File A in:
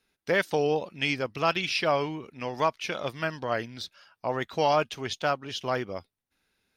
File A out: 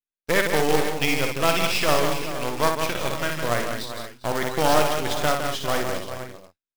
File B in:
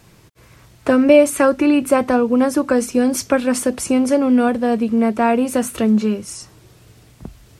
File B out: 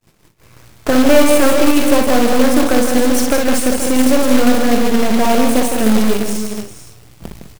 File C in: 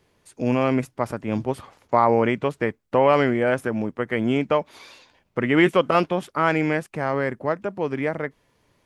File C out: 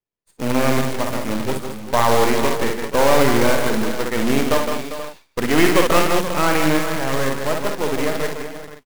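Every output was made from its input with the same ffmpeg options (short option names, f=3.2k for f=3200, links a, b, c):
-filter_complex "[0:a]aeval=exprs='if(lt(val(0),0),0.251*val(0),val(0))':c=same,asplit=2[a][b];[b]aecho=0:1:59|160|204|399|479|526:0.531|0.447|0.299|0.237|0.211|0.126[c];[a][c]amix=inputs=2:normalize=0,acrusher=bits=2:mode=log:mix=0:aa=0.000001,acontrast=29,agate=range=-33dB:threshold=-36dB:ratio=3:detection=peak"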